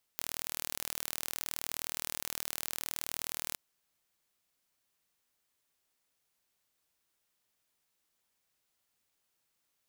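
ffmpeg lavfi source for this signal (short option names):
-f lavfi -i "aevalsrc='0.355*eq(mod(n,1122),0)':d=3.36:s=44100"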